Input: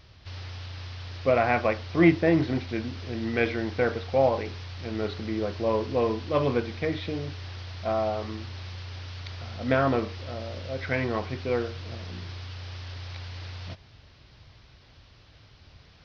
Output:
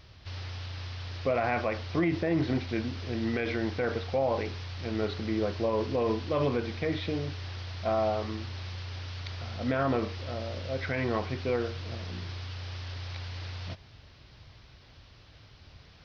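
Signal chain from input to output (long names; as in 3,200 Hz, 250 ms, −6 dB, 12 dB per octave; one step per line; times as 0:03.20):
brickwall limiter −19 dBFS, peak gain reduction 11 dB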